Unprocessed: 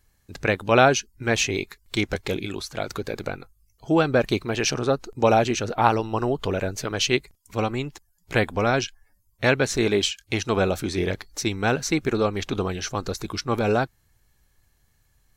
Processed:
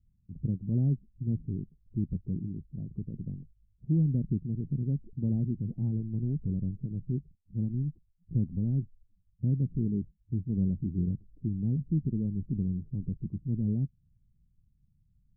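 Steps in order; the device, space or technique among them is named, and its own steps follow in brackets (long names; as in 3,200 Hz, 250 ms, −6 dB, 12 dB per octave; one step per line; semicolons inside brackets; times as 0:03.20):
the neighbour's flat through the wall (low-pass filter 230 Hz 24 dB per octave; parametric band 160 Hz +8 dB 0.81 octaves)
level −3.5 dB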